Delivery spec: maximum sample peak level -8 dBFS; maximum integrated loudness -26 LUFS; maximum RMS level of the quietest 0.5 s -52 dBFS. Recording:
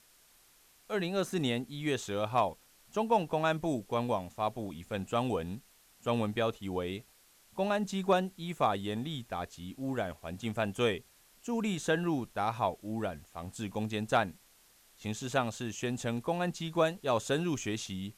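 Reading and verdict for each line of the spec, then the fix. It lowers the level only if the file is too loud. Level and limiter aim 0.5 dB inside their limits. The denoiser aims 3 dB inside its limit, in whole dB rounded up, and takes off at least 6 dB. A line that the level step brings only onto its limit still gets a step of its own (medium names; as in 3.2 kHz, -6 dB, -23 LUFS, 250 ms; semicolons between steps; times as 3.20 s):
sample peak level -16.0 dBFS: pass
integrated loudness -33.5 LUFS: pass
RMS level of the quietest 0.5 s -63 dBFS: pass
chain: none needed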